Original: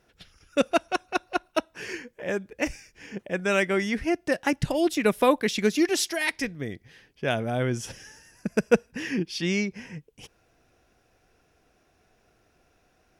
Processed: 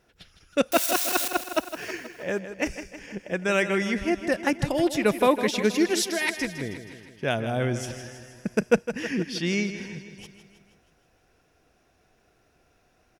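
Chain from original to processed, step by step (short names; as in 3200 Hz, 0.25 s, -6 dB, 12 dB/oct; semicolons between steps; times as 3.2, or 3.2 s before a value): 0.72–1.28 switching spikes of -16.5 dBFS; feedback echo 0.159 s, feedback 58%, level -11 dB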